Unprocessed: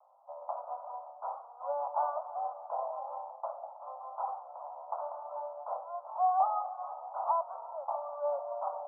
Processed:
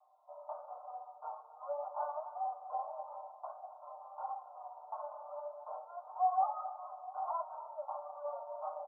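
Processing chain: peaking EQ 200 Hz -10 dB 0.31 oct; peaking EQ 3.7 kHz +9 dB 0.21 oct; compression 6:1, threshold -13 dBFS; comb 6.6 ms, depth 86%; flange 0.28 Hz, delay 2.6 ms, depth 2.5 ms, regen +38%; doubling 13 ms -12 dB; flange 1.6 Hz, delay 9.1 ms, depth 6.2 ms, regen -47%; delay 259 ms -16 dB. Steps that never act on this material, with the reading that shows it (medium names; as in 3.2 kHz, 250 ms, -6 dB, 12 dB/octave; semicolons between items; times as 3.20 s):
peaking EQ 200 Hz: input has nothing below 480 Hz; peaking EQ 3.7 kHz: input has nothing above 1.4 kHz; compression, threshold -13 dBFS: peak at its input -17.0 dBFS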